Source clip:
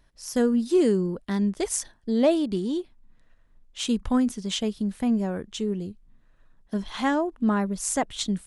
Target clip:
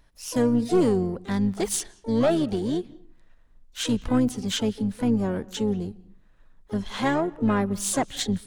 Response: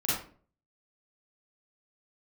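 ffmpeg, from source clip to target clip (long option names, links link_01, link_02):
-filter_complex "[0:a]aeval=exprs='(tanh(6.31*val(0)+0.2)-tanh(0.2))/6.31':channel_layout=same,asplit=4[link_01][link_02][link_03][link_04];[link_02]asetrate=22050,aresample=44100,atempo=2,volume=-11dB[link_05];[link_03]asetrate=55563,aresample=44100,atempo=0.793701,volume=-16dB[link_06];[link_04]asetrate=88200,aresample=44100,atempo=0.5,volume=-16dB[link_07];[link_01][link_05][link_06][link_07]amix=inputs=4:normalize=0,asplit=2[link_08][link_09];[1:a]atrim=start_sample=2205,lowpass=6300,adelay=130[link_10];[link_09][link_10]afir=irnorm=-1:irlink=0,volume=-31.5dB[link_11];[link_08][link_11]amix=inputs=2:normalize=0,volume=1.5dB"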